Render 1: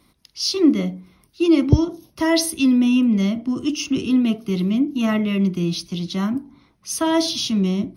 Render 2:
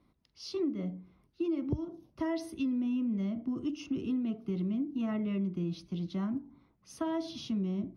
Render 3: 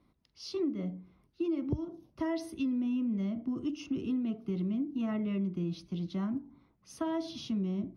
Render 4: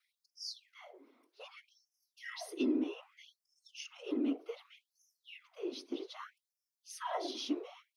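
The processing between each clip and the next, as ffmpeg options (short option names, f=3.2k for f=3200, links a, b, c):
-af "lowpass=f=1k:p=1,acompressor=threshold=-21dB:ratio=6,volume=-8.5dB"
-af anull
-af "afftfilt=real='hypot(re,im)*cos(2*PI*random(0))':imag='hypot(re,im)*sin(2*PI*random(1))':win_size=512:overlap=0.75,afftfilt=real='re*gte(b*sr/1024,220*pow(4900/220,0.5+0.5*sin(2*PI*0.64*pts/sr)))':imag='im*gte(b*sr/1024,220*pow(4900/220,0.5+0.5*sin(2*PI*0.64*pts/sr)))':win_size=1024:overlap=0.75,volume=8.5dB"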